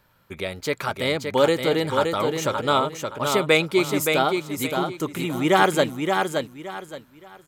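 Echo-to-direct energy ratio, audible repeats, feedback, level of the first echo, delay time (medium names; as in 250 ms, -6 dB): -4.5 dB, 3, 26%, -5.0 dB, 571 ms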